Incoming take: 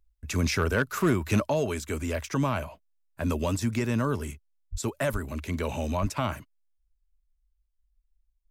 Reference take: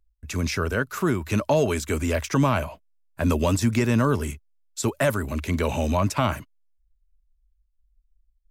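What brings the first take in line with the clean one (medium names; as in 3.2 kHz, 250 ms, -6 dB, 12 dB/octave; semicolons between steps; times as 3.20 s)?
clip repair -15.5 dBFS; 1.46 s: gain correction +6 dB; 4.71–4.83 s: high-pass 140 Hz 24 dB/octave; 5.12–5.24 s: high-pass 140 Hz 24 dB/octave; 6.01–6.13 s: high-pass 140 Hz 24 dB/octave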